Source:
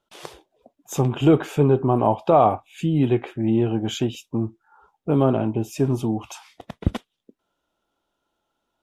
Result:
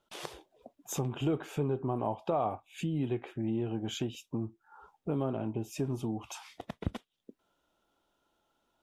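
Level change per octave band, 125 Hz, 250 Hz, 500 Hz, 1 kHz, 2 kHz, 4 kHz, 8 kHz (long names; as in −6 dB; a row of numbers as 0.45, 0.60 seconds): −12.5, −13.0, −14.0, −14.5, −10.0, −8.5, −6.0 decibels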